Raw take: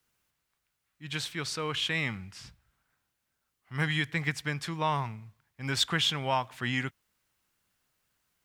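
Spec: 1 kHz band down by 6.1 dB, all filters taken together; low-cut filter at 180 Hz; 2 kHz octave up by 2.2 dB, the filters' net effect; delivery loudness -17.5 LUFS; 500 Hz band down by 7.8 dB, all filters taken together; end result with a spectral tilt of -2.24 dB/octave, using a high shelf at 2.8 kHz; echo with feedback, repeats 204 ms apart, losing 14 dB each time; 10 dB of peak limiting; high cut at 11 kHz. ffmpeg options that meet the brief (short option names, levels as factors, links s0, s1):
-af "highpass=180,lowpass=11000,equalizer=f=500:t=o:g=-8.5,equalizer=f=1000:t=o:g=-6,equalizer=f=2000:t=o:g=3,highshelf=f=2800:g=4,alimiter=limit=0.0891:level=0:latency=1,aecho=1:1:204|408:0.2|0.0399,volume=5.96"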